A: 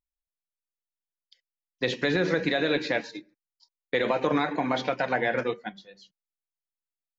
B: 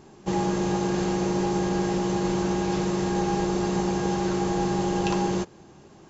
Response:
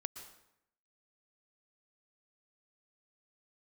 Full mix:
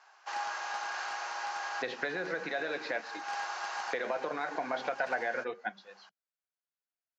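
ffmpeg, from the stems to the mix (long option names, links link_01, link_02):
-filter_complex "[0:a]acompressor=threshold=-29dB:ratio=6,volume=-3dB,asplit=2[link_01][link_02];[1:a]highpass=frequency=910:width=0.5412,highpass=frequency=910:width=1.3066,aeval=exprs='(mod(20*val(0)+1,2)-1)/20':channel_layout=same,volume=-2.5dB[link_03];[link_02]apad=whole_len=268670[link_04];[link_03][link_04]sidechaincompress=threshold=-44dB:ratio=8:attack=8.5:release=254[link_05];[link_01][link_05]amix=inputs=2:normalize=0,highpass=270,equalizer=frequency=290:width_type=q:width=4:gain=-5,equalizer=frequency=680:width_type=q:width=4:gain=6,equalizer=frequency=1500:width_type=q:width=4:gain=8,equalizer=frequency=3500:width_type=q:width=4:gain=-5,lowpass=frequency=5600:width=0.5412,lowpass=frequency=5600:width=1.3066"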